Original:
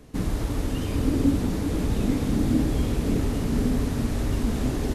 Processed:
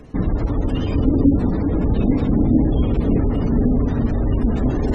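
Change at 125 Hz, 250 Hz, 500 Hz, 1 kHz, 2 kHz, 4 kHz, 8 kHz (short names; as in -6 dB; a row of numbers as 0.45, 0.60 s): +6.5 dB, +6.5 dB, +6.5 dB, +4.5 dB, -1.0 dB, n/a, under -15 dB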